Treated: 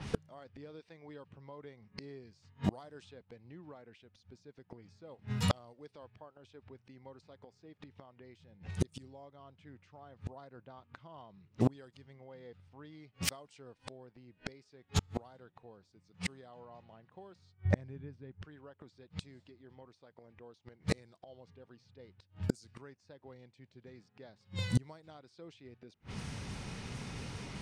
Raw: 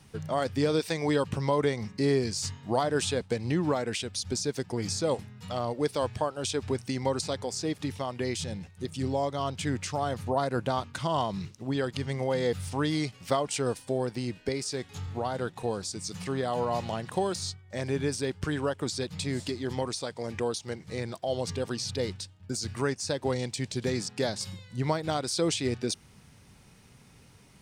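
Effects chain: flipped gate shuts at -29 dBFS, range -37 dB; low-pass opened by the level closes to 2000 Hz, open at -47 dBFS; 17.65–18.42 tone controls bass +12 dB, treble -14 dB; gain +13 dB

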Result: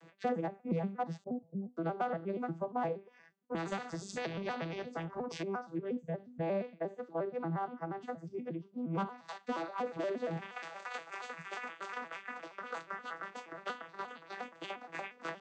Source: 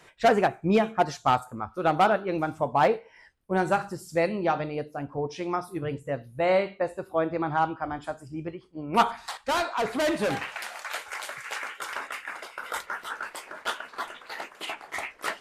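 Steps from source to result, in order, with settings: arpeggiated vocoder minor triad, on E3, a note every 0.118 s; 1.24–1.77 steep low-pass 510 Hz 36 dB/oct; compressor 2.5:1, threshold -36 dBFS, peak gain reduction 14 dB; 3.55–5.43 spectral compressor 2:1; gain -1 dB

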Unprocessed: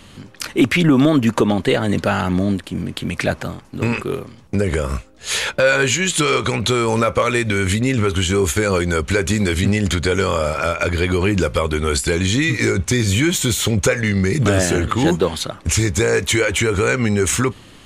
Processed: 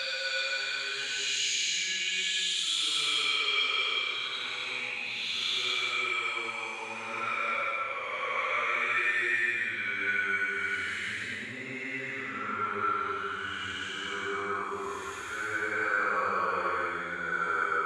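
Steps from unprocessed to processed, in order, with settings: band-pass sweep 4900 Hz -> 1300 Hz, 5.45–8.14; Paulstretch 5.3×, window 0.25 s, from 5.63; gain -3 dB

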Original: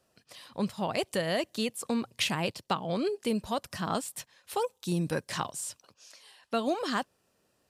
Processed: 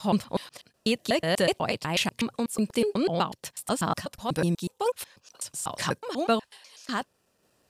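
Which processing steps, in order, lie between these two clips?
slices in reverse order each 0.123 s, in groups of 7; random-step tremolo; gain +6.5 dB

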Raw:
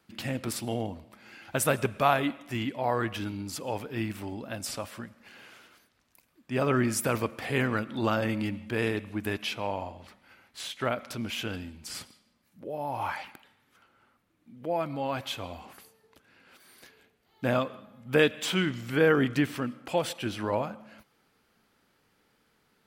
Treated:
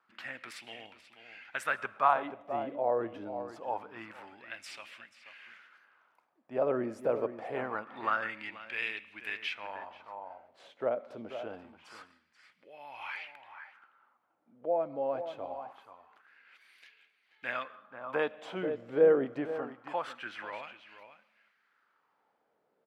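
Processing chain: outdoor echo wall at 83 m, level -10 dB; wah 0.25 Hz 530–2500 Hz, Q 2.4; gain +2.5 dB

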